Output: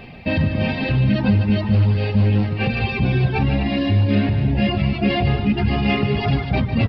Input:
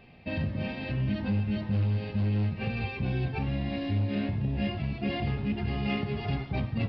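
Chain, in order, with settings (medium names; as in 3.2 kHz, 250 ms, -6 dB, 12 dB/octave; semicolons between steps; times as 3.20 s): reverb removal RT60 1.2 s; in parallel at +2 dB: peak limiter -31.5 dBFS, peak gain reduction 11 dB; on the sum: loudspeakers at several distances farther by 51 m -9 dB, 85 m -11 dB; trim +9 dB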